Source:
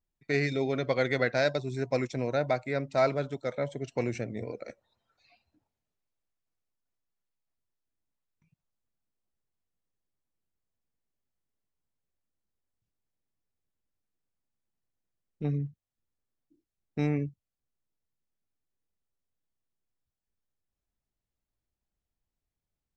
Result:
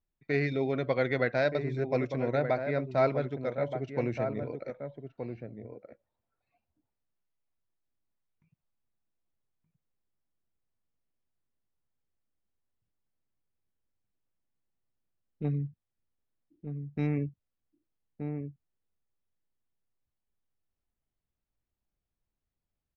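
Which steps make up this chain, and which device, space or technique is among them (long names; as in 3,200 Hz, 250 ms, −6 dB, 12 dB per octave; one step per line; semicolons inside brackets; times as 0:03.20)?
shout across a valley (high-frequency loss of the air 220 metres; slap from a distant wall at 210 metres, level −7 dB)
0:15.48–0:17.17: dynamic equaliser 620 Hz, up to −4 dB, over −46 dBFS, Q 0.74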